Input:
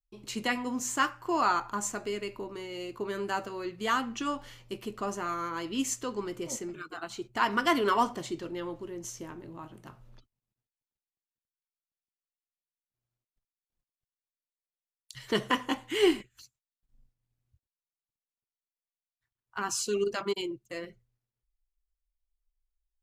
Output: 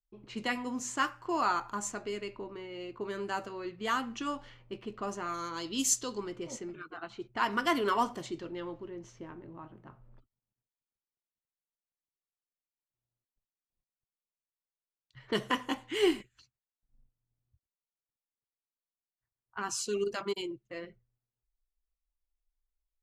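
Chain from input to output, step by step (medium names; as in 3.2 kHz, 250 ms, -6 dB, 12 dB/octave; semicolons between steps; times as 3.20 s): level-controlled noise filter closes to 1.2 kHz, open at -27.5 dBFS; 5.34–6.18 s: resonant high shelf 3 kHz +8 dB, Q 1.5; trim -3 dB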